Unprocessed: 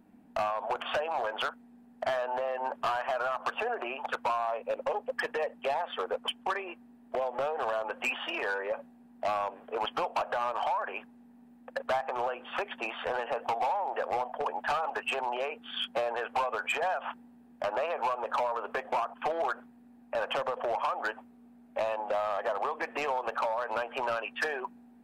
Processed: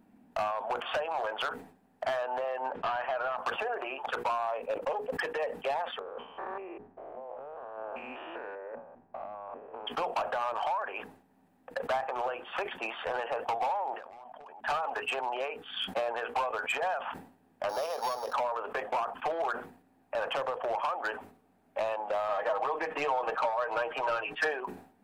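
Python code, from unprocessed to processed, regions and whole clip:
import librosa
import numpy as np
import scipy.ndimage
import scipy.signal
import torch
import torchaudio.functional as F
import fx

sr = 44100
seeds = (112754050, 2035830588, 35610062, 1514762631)

y = fx.chain(x, sr, fx.lowpass(hz=3600.0, slope=12),
    fx.peak_eq(hz=1100.0, db=-3.0, octaves=0.25), at=(2.66, 3.38))
y = fx.chain(y, sr, fx.spec_steps(hold_ms=200),
    fx.lowpass(hz=1300.0, slope=12),
    fx.over_compress(threshold_db=-40.0, ratio=-1.0), at=(5.99, 9.87))
y = fx.chain(y, sr, fx.peak_eq(hz=490.0, db=-9.5, octaves=0.38),
    fx.level_steps(step_db=24), at=(13.94, 14.63))
y = fx.chain(y, sr, fx.sample_sort(block=8),
    fx.high_shelf(hz=2600.0, db=-8.5),
    fx.notch(hz=350.0, q=10.0), at=(17.69, 18.33))
y = fx.chain(y, sr, fx.high_shelf(hz=8700.0, db=-8.0),
    fx.comb(ms=6.4, depth=0.7), at=(22.28, 24.52))
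y = fx.hum_notches(y, sr, base_hz=60, count=8)
y = fx.sustainer(y, sr, db_per_s=110.0)
y = F.gain(torch.from_numpy(y), -1.0).numpy()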